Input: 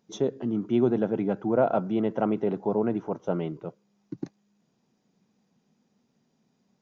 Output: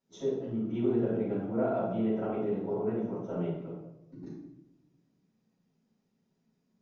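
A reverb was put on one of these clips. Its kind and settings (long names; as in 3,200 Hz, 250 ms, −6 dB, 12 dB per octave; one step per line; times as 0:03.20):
rectangular room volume 300 cubic metres, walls mixed, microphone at 6.7 metres
level −22.5 dB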